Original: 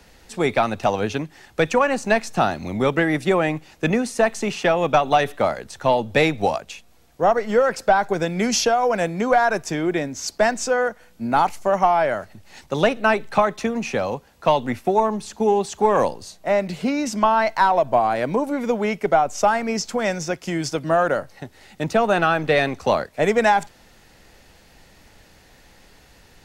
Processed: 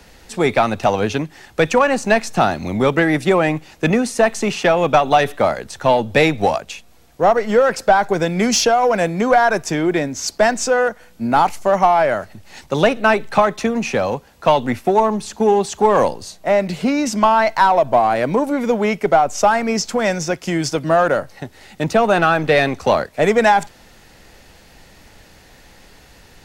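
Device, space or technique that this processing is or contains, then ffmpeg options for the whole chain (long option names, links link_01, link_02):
parallel distortion: -filter_complex "[0:a]asplit=2[link_01][link_02];[link_02]asoftclip=type=hard:threshold=-20dB,volume=-9.5dB[link_03];[link_01][link_03]amix=inputs=2:normalize=0,volume=2.5dB"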